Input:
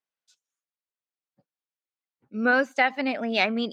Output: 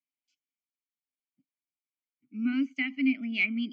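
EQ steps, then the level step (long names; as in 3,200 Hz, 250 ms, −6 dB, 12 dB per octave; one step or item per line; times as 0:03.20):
formant filter i
phaser with its sweep stopped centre 2,500 Hz, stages 8
+8.0 dB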